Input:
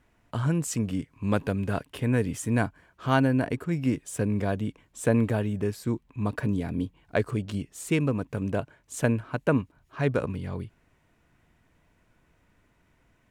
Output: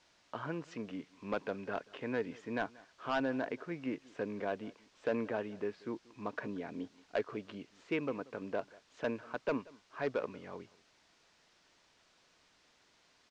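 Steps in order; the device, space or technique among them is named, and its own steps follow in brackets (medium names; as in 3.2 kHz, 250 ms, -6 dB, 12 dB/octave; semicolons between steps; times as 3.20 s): aircraft radio (band-pass 370–2600 Hz; hard clipper -21 dBFS, distortion -12 dB; white noise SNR 24 dB); low-pass 5.9 kHz 24 dB/octave; delay 184 ms -23 dB; trim -5 dB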